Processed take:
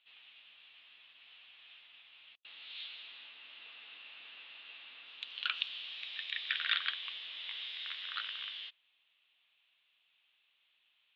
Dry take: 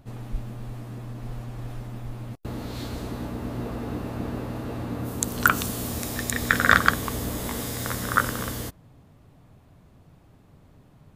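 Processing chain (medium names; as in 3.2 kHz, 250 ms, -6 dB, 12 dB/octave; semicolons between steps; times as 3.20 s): saturation -11.5 dBFS, distortion -10 dB; Butterworth band-pass 3.2 kHz, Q 2.7; distance through air 410 m; trim +12.5 dB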